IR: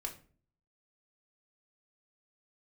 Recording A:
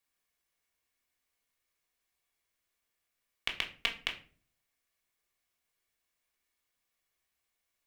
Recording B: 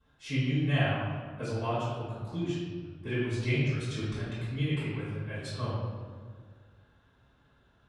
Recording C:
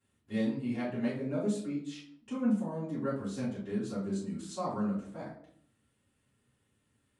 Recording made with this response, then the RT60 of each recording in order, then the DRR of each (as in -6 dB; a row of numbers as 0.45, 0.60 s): A; 0.45, 1.8, 0.60 s; 1.0, -15.0, -12.0 dB